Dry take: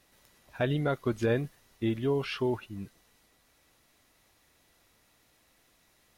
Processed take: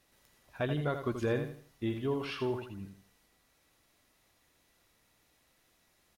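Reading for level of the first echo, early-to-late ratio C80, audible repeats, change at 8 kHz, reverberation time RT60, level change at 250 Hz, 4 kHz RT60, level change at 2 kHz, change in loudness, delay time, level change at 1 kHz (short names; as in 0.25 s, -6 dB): -8.0 dB, none, 3, n/a, none, -4.0 dB, none, -3.5 dB, -4.0 dB, 82 ms, -2.5 dB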